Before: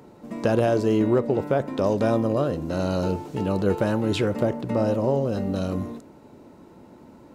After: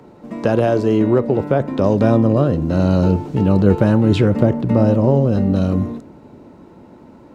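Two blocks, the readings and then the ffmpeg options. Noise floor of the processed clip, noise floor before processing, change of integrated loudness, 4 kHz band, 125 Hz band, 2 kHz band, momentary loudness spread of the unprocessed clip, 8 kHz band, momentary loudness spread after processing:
-44 dBFS, -49 dBFS, +8.0 dB, +2.5 dB, +11.5 dB, +4.0 dB, 7 LU, n/a, 5 LU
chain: -filter_complex "[0:a]highshelf=f=6.1k:g=-10.5,acrossover=split=260|1300[a][b][c];[a]dynaudnorm=f=260:g=13:m=8dB[d];[d][b][c]amix=inputs=3:normalize=0,volume=5dB"

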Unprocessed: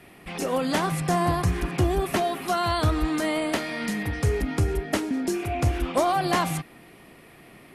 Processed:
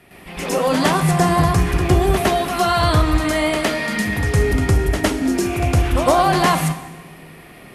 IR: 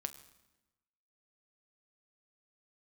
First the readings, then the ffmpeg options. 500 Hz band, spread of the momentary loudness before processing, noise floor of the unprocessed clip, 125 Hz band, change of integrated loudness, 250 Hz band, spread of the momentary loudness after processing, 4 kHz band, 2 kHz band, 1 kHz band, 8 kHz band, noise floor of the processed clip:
+7.5 dB, 5 LU, -50 dBFS, +8.5 dB, +8.0 dB, +7.0 dB, 5 LU, +8.0 dB, +8.5 dB, +8.0 dB, +8.0 dB, -42 dBFS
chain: -filter_complex "[0:a]equalizer=f=300:t=o:w=0.27:g=-3,asplit=2[a][b];[1:a]atrim=start_sample=2205,asetrate=33516,aresample=44100,adelay=109[c];[b][c]afir=irnorm=-1:irlink=0,volume=7.5dB[d];[a][d]amix=inputs=2:normalize=0"

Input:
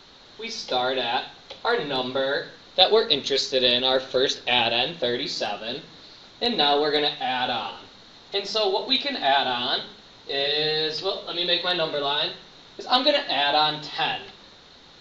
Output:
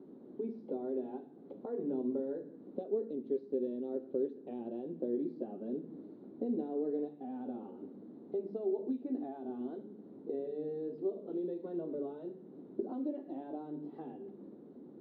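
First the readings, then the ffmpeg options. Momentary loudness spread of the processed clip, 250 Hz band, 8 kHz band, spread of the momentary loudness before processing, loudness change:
13 LU, -3.5 dB, n/a, 12 LU, -16.5 dB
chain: -af "acompressor=threshold=-37dB:ratio=3,asuperpass=centerf=280:order=4:qfactor=1.5,volume=8.5dB"

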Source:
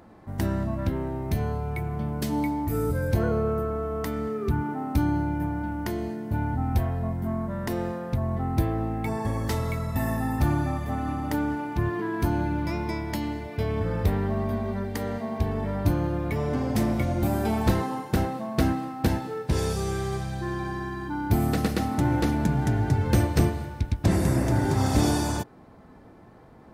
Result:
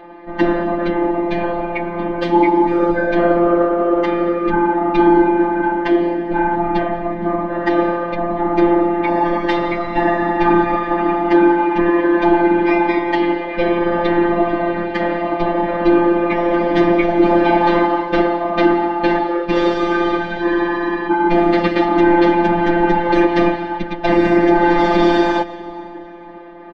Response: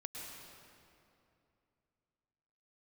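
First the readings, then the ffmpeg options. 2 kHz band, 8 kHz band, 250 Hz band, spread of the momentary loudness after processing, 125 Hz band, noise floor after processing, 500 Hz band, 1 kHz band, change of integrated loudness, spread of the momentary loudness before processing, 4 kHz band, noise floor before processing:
+15.0 dB, under -10 dB, +12.0 dB, 7 LU, -4.0 dB, -30 dBFS, +15.0 dB, +15.5 dB, +11.0 dB, 7 LU, +8.5 dB, -49 dBFS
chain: -filter_complex "[0:a]highpass=100,asplit=2[a][b];[1:a]atrim=start_sample=2205,asetrate=28665,aresample=44100[c];[b][c]afir=irnorm=-1:irlink=0,volume=-15.5dB[d];[a][d]amix=inputs=2:normalize=0,afftfilt=real='hypot(re,im)*cos(2*PI*random(0))':imag='hypot(re,im)*sin(2*PI*random(1))':win_size=512:overlap=0.75,lowpass=f=3.3k:w=0.5412,lowpass=f=3.3k:w=1.3066,lowshelf=f=150:g=-10.5,bandreject=f=186.4:t=h:w=4,bandreject=f=372.8:t=h:w=4,bandreject=f=559.2:t=h:w=4,bandreject=f=745.6:t=h:w=4,afftfilt=real='hypot(re,im)*cos(PI*b)':imag='0':win_size=1024:overlap=0.75,aecho=1:1:3.3:1,alimiter=level_in=22dB:limit=-1dB:release=50:level=0:latency=1,volume=-1dB"

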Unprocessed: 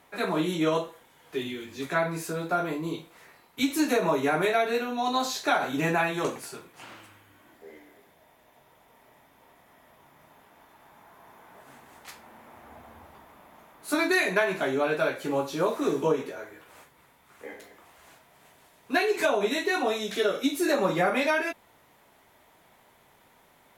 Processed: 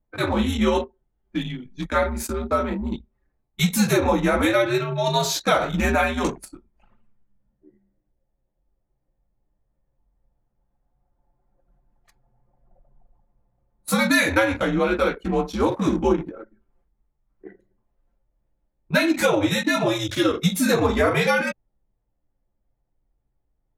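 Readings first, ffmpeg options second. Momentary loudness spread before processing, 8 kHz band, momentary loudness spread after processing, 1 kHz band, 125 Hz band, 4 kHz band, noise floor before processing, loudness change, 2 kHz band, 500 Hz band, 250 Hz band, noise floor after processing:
20 LU, +7.5 dB, 11 LU, +3.5 dB, +11.0 dB, +6.0 dB, -60 dBFS, +5.0 dB, +4.5 dB, +4.0 dB, +7.0 dB, -75 dBFS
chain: -af "bass=f=250:g=1,treble=f=4k:g=4,afreqshift=-98,anlmdn=6.31,volume=5dB"

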